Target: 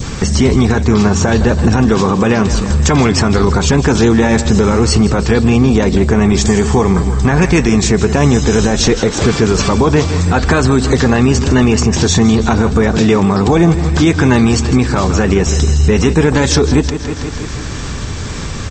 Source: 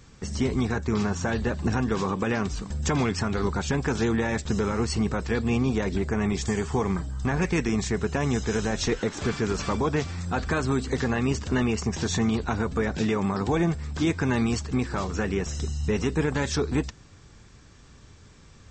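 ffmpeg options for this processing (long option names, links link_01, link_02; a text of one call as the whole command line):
ffmpeg -i in.wav -filter_complex "[0:a]asplit=2[link_01][link_02];[link_02]aecho=0:1:162|324|486|648|810|972:0.2|0.11|0.0604|0.0332|0.0183|0.01[link_03];[link_01][link_03]amix=inputs=2:normalize=0,acompressor=mode=upward:threshold=-27dB:ratio=2.5,adynamicequalizer=threshold=0.00794:dfrequency=1700:dqfactor=1.1:tfrequency=1700:tqfactor=1.1:attack=5:release=100:ratio=0.375:range=2:mode=cutabove:tftype=bell,alimiter=level_in=18.5dB:limit=-1dB:release=50:level=0:latency=1,volume=-1dB" out.wav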